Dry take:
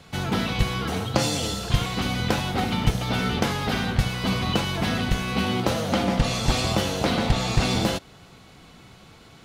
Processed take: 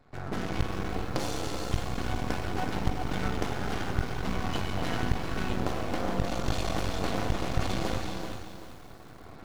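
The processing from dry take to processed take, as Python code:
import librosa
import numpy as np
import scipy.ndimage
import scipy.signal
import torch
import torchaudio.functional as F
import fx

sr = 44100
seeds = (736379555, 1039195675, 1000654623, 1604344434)

y = fx.wiener(x, sr, points=15)
y = fx.recorder_agc(y, sr, target_db=-9.5, rise_db_per_s=7.1, max_gain_db=30)
y = y + 0.34 * np.pad(y, (int(2.8 * sr / 1000.0), 0))[:len(y)]
y = fx.rev_gated(y, sr, seeds[0], gate_ms=500, shape='flat', drr_db=2.5)
y = np.maximum(y, 0.0)
y = fx.echo_crushed(y, sr, ms=384, feedback_pct=35, bits=7, wet_db=-9.0)
y = y * 10.0 ** (-6.5 / 20.0)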